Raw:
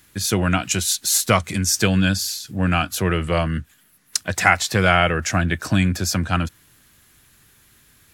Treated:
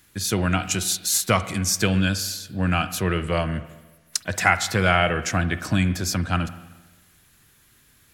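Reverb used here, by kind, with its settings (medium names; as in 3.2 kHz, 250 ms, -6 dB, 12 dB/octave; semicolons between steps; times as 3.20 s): spring tank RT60 1.2 s, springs 44/52 ms, chirp 30 ms, DRR 12.5 dB; trim -3 dB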